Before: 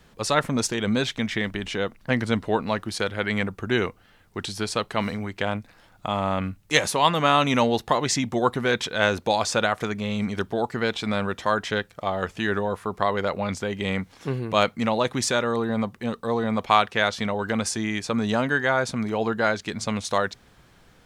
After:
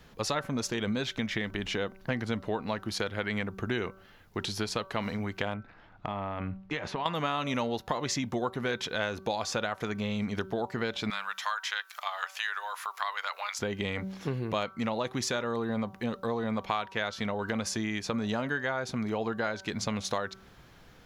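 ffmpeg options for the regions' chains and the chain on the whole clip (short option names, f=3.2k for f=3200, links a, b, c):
-filter_complex "[0:a]asettb=1/sr,asplit=3[a][b][c];[a]atrim=end=5.544[d];[b]atrim=start=5.54:end=7.06,asetpts=PTS-STARTPTS,afade=t=in:d=0.004:c=qsin,afade=t=out:st=1.516:d=0.004:c=qsin,lowpass=2.5k,acompressor=threshold=-27dB:ratio=6:attack=3.2:release=140:knee=1:detection=peak,bandreject=f=530:w=8.8[e];[c]atrim=start=7.056[f];[d][e]acrossfade=d=0.004:c1=hsin:c2=qsin[g];[g][f]acrossfade=d=0.004:c1=qsin:c2=hsin,asettb=1/sr,asplit=3[h][i][j];[h]atrim=end=11.104[k];[i]atrim=start=11.1:end=13.59,asetpts=PTS-STARTPTS,afade=t=in:d=0.004:c=qsin,afade=t=out:st=2.486:d=0.004:c=qsin,highpass=f=990:w=0.5412,highpass=f=990:w=1.3066,highshelf=f=6.3k:g=6.5,acompressor=mode=upward:threshold=-31dB:ratio=2.5:attack=3.2:release=140:knee=2.83:detection=peak[l];[j]atrim=start=13.586[m];[k][l]acrossfade=d=0.004:c1=hsin:c2=qsin[n];[n][m]acrossfade=d=0.004:c1=qsin:c2=hsin,equalizer=f=8.5k:w=4.7:g=-12,bandreject=f=191.2:t=h:w=4,bandreject=f=382.4:t=h:w=4,bandreject=f=573.6:t=h:w=4,bandreject=f=764.8:t=h:w=4,bandreject=f=956:t=h:w=4,bandreject=f=1.1472k:t=h:w=4,bandreject=f=1.3384k:t=h:w=4,bandreject=f=1.5296k:t=h:w=4,acompressor=threshold=-29dB:ratio=4"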